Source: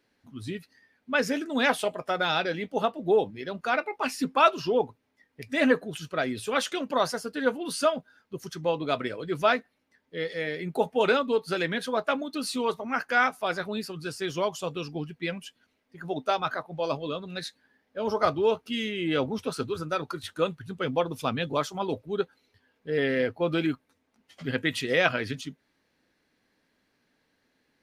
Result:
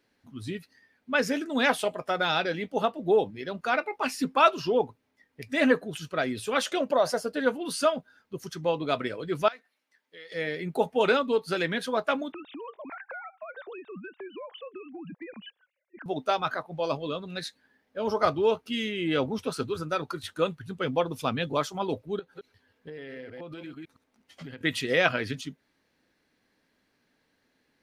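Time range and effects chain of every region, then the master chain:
0:06.65–0:07.41: parametric band 600 Hz +10.5 dB 0.7 octaves + downward compressor 2.5 to 1, threshold −20 dBFS
0:09.48–0:10.32: high-pass filter 1,300 Hz 6 dB per octave + downward compressor 2.5 to 1, threshold −46 dBFS
0:12.32–0:16.06: three sine waves on the formant tracks + downward compressor 10 to 1, threshold −37 dBFS
0:22.19–0:24.61: delay that plays each chunk backwards 111 ms, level −10 dB + downward compressor 16 to 1, threshold −37 dBFS
whole clip: no processing

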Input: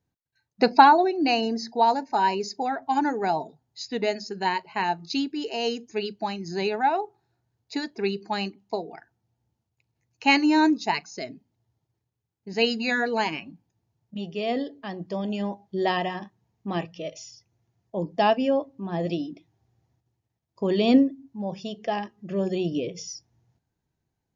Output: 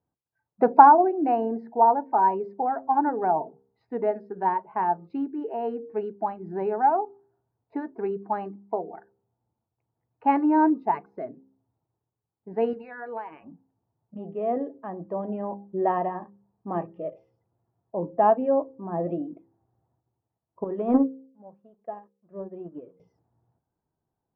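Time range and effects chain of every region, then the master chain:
0:12.73–0:13.44: drawn EQ curve 110 Hz 0 dB, 160 Hz −14 dB, 2,600 Hz +4 dB + downward compressor 5 to 1, threshold −30 dBFS
0:20.64–0:23.00: leveller curve on the samples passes 1 + expander for the loud parts 2.5 to 1, over −28 dBFS
whole clip: low-pass filter 1,200 Hz 24 dB per octave; low-shelf EQ 270 Hz −10 dB; hum removal 66.56 Hz, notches 8; level +3.5 dB

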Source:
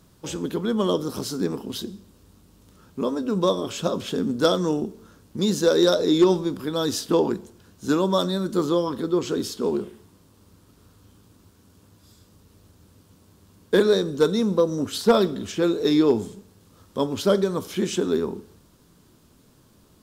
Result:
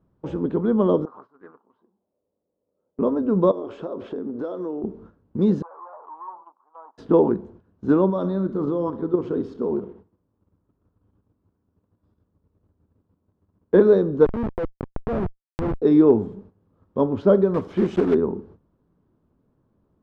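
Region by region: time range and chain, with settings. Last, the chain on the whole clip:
0:01.05–0:02.99: envelope filter 510–1,400 Hz, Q 4.4, up, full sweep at −24 dBFS + highs frequency-modulated by the lows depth 0.12 ms
0:03.51–0:04.84: low shelf with overshoot 240 Hz −9.5 dB, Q 1.5 + downward compressor, threshold −30 dBFS
0:05.62–0:06.98: tube saturation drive 24 dB, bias 0.2 + flat-topped band-pass 980 Hz, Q 3.1
0:08.10–0:13.75: output level in coarse steps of 9 dB + repeating echo 63 ms, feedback 57%, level −15 dB
0:14.25–0:15.82: comparator with hysteresis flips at −19 dBFS + downward compressor, threshold −26 dBFS
0:17.54–0:18.15: one scale factor per block 3 bits + high-shelf EQ 4,200 Hz +8 dB
whole clip: low-pass filter 1,000 Hz 12 dB per octave; noise gate −49 dBFS, range −13 dB; level +4 dB

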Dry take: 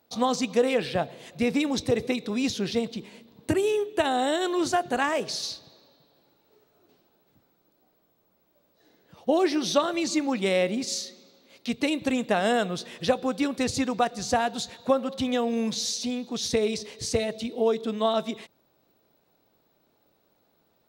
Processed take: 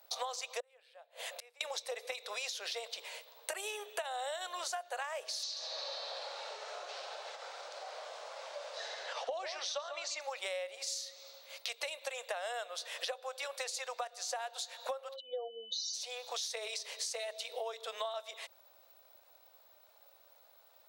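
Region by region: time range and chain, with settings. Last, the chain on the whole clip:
0:00.60–0:01.61: gate with flip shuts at −30 dBFS, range −33 dB + parametric band 5,700 Hz −4.5 dB 0.5 octaves
0:05.43–0:10.21: low-pass filter 7,000 Hz 24 dB per octave + upward compression, threshold −27 dBFS + single-tap delay 137 ms −11 dB
0:15.15–0:15.93: expanding power law on the bin magnitudes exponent 2.8 + steady tone 3,000 Hz −54 dBFS
whole clip: elliptic high-pass filter 540 Hz, stop band 50 dB; high-shelf EQ 5,000 Hz +5.5 dB; downward compressor 12 to 1, threshold −41 dBFS; level +4.5 dB

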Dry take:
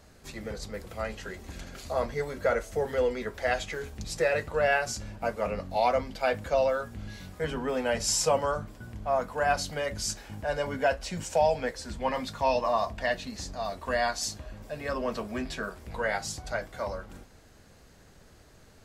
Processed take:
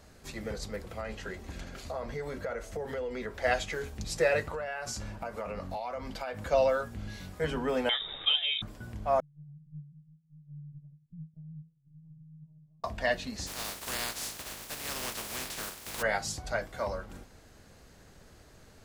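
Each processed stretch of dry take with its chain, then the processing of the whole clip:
0:00.76–0:03.44: high-shelf EQ 5,300 Hz −5.5 dB + downward compressor, threshold −32 dBFS
0:04.44–0:06.47: parametric band 1,100 Hz +4.5 dB 1.1 octaves + downward compressor 16 to 1, threshold −32 dBFS
0:07.89–0:08.62: parametric band 910 Hz −11.5 dB 0.63 octaves + voice inversion scrambler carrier 3,700 Hz
0:09.20–0:12.84: flat-topped band-pass 150 Hz, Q 6.7 + linear-prediction vocoder at 8 kHz pitch kept
0:13.46–0:16.01: compressing power law on the bin magnitudes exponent 0.22 + downward compressor 2 to 1, threshold −36 dBFS
whole clip: no processing

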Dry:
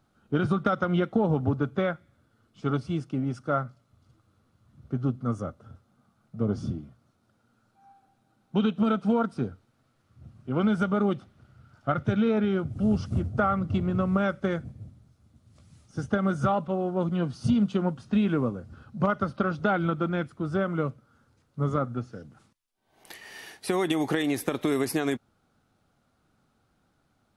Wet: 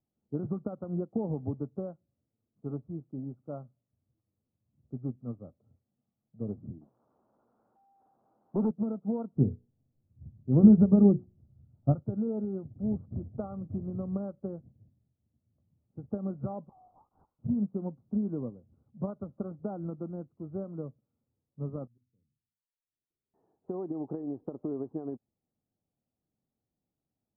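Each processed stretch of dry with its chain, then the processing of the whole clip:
0:06.81–0:08.71: spike at every zero crossing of −29.5 dBFS + high-pass filter 240 Hz + leveller curve on the samples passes 3
0:09.35–0:11.95: spectral tilt −4.5 dB per octave + mains-hum notches 60/120/180/240/300/360/420/480 Hz
0:16.69–0:17.39: linear-phase brick-wall high-pass 680 Hz + linear-prediction vocoder at 8 kHz whisper
0:21.87–0:23.34: guitar amp tone stack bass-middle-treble 10-0-1 + volume swells 122 ms + mains-hum notches 50/100/150/200/250 Hz
whole clip: Bessel low-pass filter 550 Hz, order 8; low-shelf EQ 62 Hz −7.5 dB; expander for the loud parts 1.5 to 1, over −43 dBFS

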